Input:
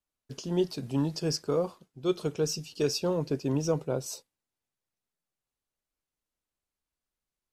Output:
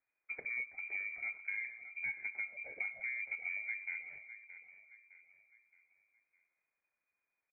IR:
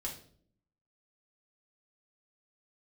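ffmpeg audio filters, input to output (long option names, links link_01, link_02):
-af "bandreject=frequency=56.55:width_type=h:width=4,bandreject=frequency=113.1:width_type=h:width=4,bandreject=frequency=169.65:width_type=h:width=4,bandreject=frequency=226.2:width_type=h:width=4,bandreject=frequency=282.75:width_type=h:width=4,bandreject=frequency=339.3:width_type=h:width=4,bandreject=frequency=395.85:width_type=h:width=4,bandreject=frequency=452.4:width_type=h:width=4,bandreject=frequency=508.95:width_type=h:width=4,bandreject=frequency=565.5:width_type=h:width=4,bandreject=frequency=622.05:width_type=h:width=4,bandreject=frequency=678.6:width_type=h:width=4,acompressor=threshold=-43dB:ratio=6,aecho=1:1:614|1228|1842|2456:0.237|0.0972|0.0399|0.0163,lowpass=frequency=3100:width_type=q:width=0.5098,lowpass=frequency=3100:width_type=q:width=0.6013,lowpass=frequency=3100:width_type=q:width=0.9,lowpass=frequency=3100:width_type=q:width=2.563,afreqshift=-3600,asetrate=30296,aresample=44100,atempo=1.45565,volume=4dB"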